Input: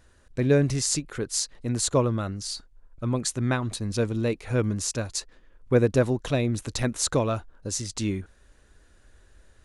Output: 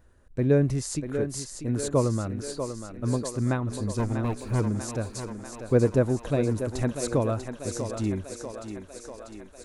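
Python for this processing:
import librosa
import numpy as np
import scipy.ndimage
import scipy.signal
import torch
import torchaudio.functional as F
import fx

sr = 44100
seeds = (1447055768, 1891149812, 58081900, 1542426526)

y = fx.lower_of_two(x, sr, delay_ms=0.78, at=(3.98, 4.59), fade=0.02)
y = fx.peak_eq(y, sr, hz=4500.0, db=-11.0, octaves=2.9)
y = fx.echo_thinned(y, sr, ms=642, feedback_pct=68, hz=240.0, wet_db=-7.0)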